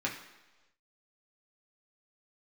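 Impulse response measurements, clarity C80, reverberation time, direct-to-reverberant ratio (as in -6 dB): 10.0 dB, 1.2 s, -3.5 dB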